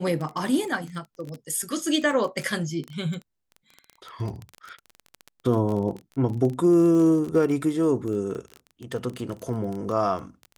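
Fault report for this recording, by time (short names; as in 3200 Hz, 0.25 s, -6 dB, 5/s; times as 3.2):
crackle 19/s -29 dBFS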